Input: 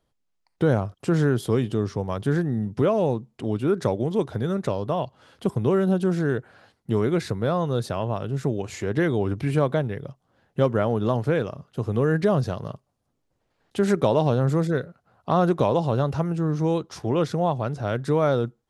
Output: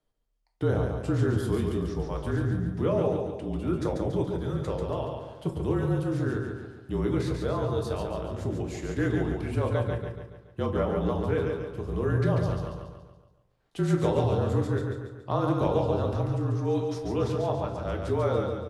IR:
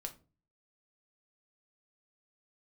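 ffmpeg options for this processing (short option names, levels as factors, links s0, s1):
-filter_complex "[0:a]afreqshift=-37,aecho=1:1:141|282|423|564|705|846:0.596|0.286|0.137|0.0659|0.0316|0.0152[s0];[1:a]atrim=start_sample=2205,asetrate=37926,aresample=44100[s1];[s0][s1]afir=irnorm=-1:irlink=0,volume=0.596"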